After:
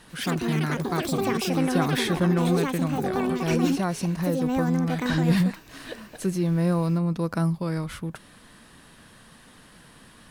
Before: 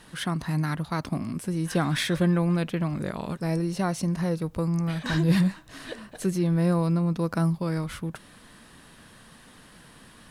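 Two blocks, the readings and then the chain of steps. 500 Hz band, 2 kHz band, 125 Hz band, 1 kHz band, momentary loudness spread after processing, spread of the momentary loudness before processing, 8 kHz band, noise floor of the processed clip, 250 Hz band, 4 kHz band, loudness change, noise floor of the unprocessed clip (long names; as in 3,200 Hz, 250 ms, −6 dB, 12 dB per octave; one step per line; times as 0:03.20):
+3.5 dB, +2.5 dB, 0.0 dB, +4.0 dB, 8 LU, 9 LU, +2.5 dB, −52 dBFS, +2.0 dB, +2.0 dB, +2.0 dB, −52 dBFS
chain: delay with pitch and tempo change per echo 99 ms, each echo +7 semitones, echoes 2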